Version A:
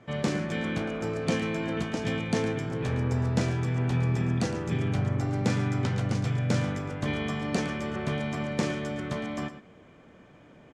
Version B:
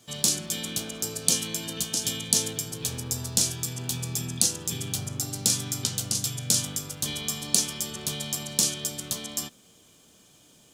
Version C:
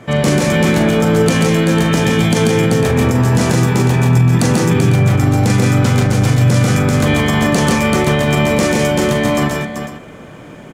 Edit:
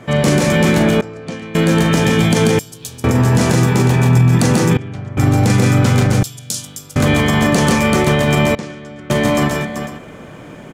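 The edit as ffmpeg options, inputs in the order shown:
-filter_complex "[0:a]asplit=3[s0][s1][s2];[1:a]asplit=2[s3][s4];[2:a]asplit=6[s5][s6][s7][s8][s9][s10];[s5]atrim=end=1.012[s11];[s0]atrim=start=1.008:end=1.552[s12];[s6]atrim=start=1.548:end=2.592[s13];[s3]atrim=start=2.588:end=3.042[s14];[s7]atrim=start=3.038:end=4.772[s15];[s1]atrim=start=4.768:end=5.172[s16];[s8]atrim=start=5.168:end=6.232[s17];[s4]atrim=start=6.228:end=6.962[s18];[s9]atrim=start=6.958:end=8.552[s19];[s2]atrim=start=8.548:end=9.102[s20];[s10]atrim=start=9.098[s21];[s11][s12]acrossfade=d=0.004:c1=hsin:c2=hsin[s22];[s22][s13]acrossfade=d=0.004:c1=hsin:c2=hsin[s23];[s23][s14]acrossfade=d=0.004:c1=hsin:c2=hsin[s24];[s24][s15]acrossfade=d=0.004:c1=hsin:c2=hsin[s25];[s25][s16]acrossfade=d=0.004:c1=hsin:c2=hsin[s26];[s26][s17]acrossfade=d=0.004:c1=hsin:c2=hsin[s27];[s27][s18]acrossfade=d=0.004:c1=hsin:c2=hsin[s28];[s28][s19]acrossfade=d=0.004:c1=hsin:c2=hsin[s29];[s29][s20]acrossfade=d=0.004:c1=hsin:c2=hsin[s30];[s30][s21]acrossfade=d=0.004:c1=hsin:c2=hsin"

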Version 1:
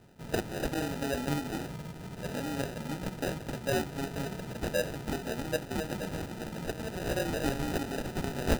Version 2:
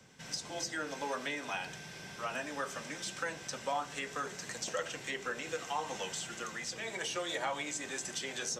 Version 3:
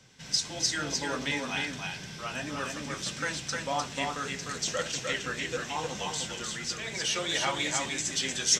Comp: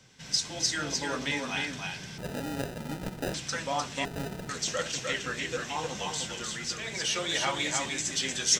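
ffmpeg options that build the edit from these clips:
-filter_complex "[0:a]asplit=2[s0][s1];[2:a]asplit=3[s2][s3][s4];[s2]atrim=end=2.182[s5];[s0]atrim=start=2.178:end=3.342[s6];[s3]atrim=start=3.338:end=4.052[s7];[s1]atrim=start=4.048:end=4.492[s8];[s4]atrim=start=4.488[s9];[s5][s6]acrossfade=d=0.004:c1=hsin:c2=hsin[s10];[s10][s7]acrossfade=d=0.004:c1=hsin:c2=hsin[s11];[s11][s8]acrossfade=d=0.004:c1=hsin:c2=hsin[s12];[s12][s9]acrossfade=d=0.004:c1=hsin:c2=hsin"

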